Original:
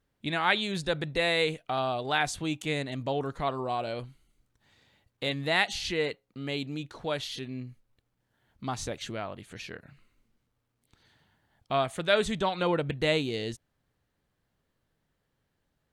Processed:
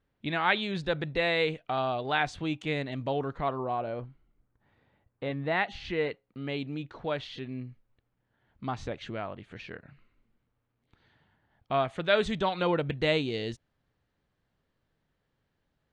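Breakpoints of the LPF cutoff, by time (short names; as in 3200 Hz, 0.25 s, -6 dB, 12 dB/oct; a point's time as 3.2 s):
3.16 s 3500 Hz
3.91 s 1500 Hz
5.25 s 1500 Hz
6.23 s 2800 Hz
11.75 s 2800 Hz
12.31 s 4900 Hz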